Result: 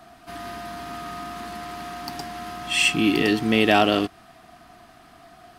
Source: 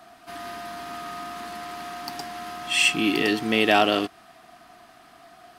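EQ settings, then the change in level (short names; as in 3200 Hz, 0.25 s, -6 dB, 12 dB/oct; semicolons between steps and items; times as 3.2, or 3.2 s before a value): low shelf 190 Hz +11 dB; 0.0 dB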